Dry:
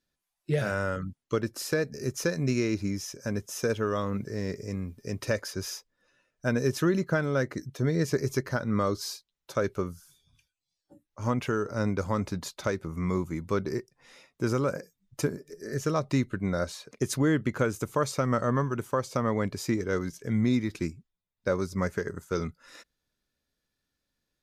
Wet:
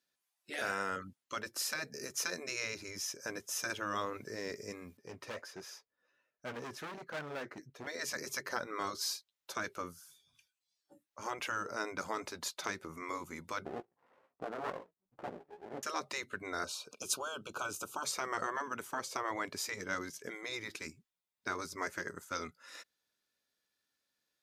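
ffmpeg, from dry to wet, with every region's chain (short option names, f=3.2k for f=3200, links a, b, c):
-filter_complex "[0:a]asettb=1/sr,asplit=3[a][b][c];[a]atrim=end=4.974[d];[b]atrim=start=4.97:end=7.87,asetpts=PTS-STARTPTS,afade=t=in:d=0.004:c=qsin,afade=t=out:st=2.896:d=0.004:c=qsin,highshelf=f=3.3k:g=-12,flanger=delay=3.3:depth=9.5:regen=-45:speed=1.4:shape=triangular,asoftclip=type=hard:threshold=-33dB[e];[c]atrim=start=7.866[f];[d][e]acrossfade=d=0.004:c1=hsin:c2=qsin[g];[g][f]acrossfade=d=0.004:c1=qsin:c2=hsin,asettb=1/sr,asplit=3[h][i][j];[h]atrim=end=13.654[k];[i]atrim=start=13.65:end=15.83,asetpts=PTS-STARTPTS,afade=t=in:d=0.004:c=qsin,afade=t=out:st=2.176:d=0.004:c=qsin,lowpass=f=1.1k:w=0.5412,lowpass=f=1.1k:w=1.3066,asplit=2[l][m];[m]adelay=17,volume=-5dB[n];[l][n]amix=inputs=2:normalize=0,atrim=end_sample=96138,aeval=exprs='max(val(0),0)':c=same[o];[j]atrim=start=15.826[p];[k][o]acrossfade=d=0.004:c1=hsin:c2=qsin[q];[q][p]acrossfade=d=0.004:c1=qsin:c2=hsin,asettb=1/sr,asplit=3[r][s][t];[r]atrim=end=16.644[u];[s]atrim=start=16.64:end=18.05,asetpts=PTS-STARTPTS,afade=t=in:d=0.004:c=qsin,afade=t=out:st=1.406:d=0.004:c=qsin,asuperstop=centerf=1900:order=12:qfactor=2.3,acompressor=mode=upward:threshold=-43dB:ratio=2.5:attack=3.2:release=140:knee=2.83:detection=peak[v];[t]atrim=start=18.046[w];[u][v]acrossfade=d=0.004:c1=hsin:c2=qsin[x];[x][w]acrossfade=d=0.004:c1=qsin:c2=hsin,afftfilt=real='re*lt(hypot(re,im),0.178)':imag='im*lt(hypot(re,im),0.178)':win_size=1024:overlap=0.75,highpass=f=680:p=1"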